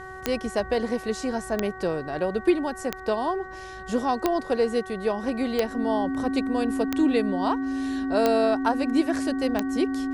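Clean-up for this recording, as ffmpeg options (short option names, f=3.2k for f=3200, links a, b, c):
-af "adeclick=t=4,bandreject=f=376.5:t=h:w=4,bandreject=f=753:t=h:w=4,bandreject=f=1.1295k:t=h:w=4,bandreject=f=1.506k:t=h:w=4,bandreject=f=1.8825k:t=h:w=4,bandreject=f=270:w=30,agate=range=-21dB:threshold=-31dB"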